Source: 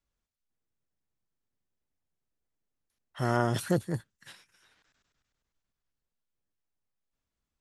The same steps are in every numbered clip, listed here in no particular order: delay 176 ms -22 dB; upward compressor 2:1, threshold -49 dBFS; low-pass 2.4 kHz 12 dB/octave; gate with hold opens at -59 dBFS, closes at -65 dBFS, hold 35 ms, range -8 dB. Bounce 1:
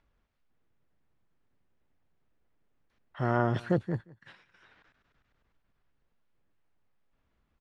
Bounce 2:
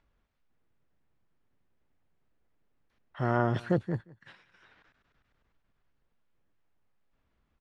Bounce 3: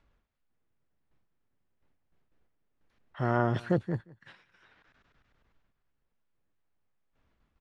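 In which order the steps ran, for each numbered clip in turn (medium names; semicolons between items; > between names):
gate with hold > low-pass > upward compressor > delay; delay > gate with hold > low-pass > upward compressor; upward compressor > delay > gate with hold > low-pass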